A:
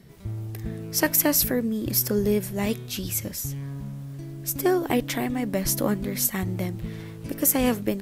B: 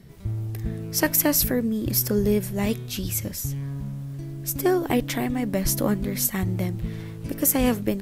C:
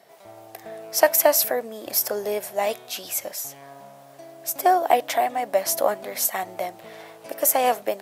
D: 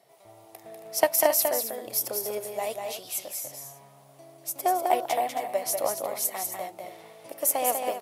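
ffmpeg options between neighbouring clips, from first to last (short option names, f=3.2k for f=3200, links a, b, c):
-af "lowshelf=f=120:g=7"
-af "highpass=f=680:t=q:w=5,volume=1dB"
-af "aeval=exprs='0.891*(cos(1*acos(clip(val(0)/0.891,-1,1)))-cos(1*PI/2))+0.126*(cos(3*acos(clip(val(0)/0.891,-1,1)))-cos(3*PI/2))':c=same,equalizer=f=125:t=o:w=0.33:g=9,equalizer=f=200:t=o:w=0.33:g=-4,equalizer=f=1.6k:t=o:w=0.33:g=-8,equalizer=f=10k:t=o:w=0.33:g=6,aecho=1:1:195.3|271.1:0.562|0.282,volume=-2.5dB"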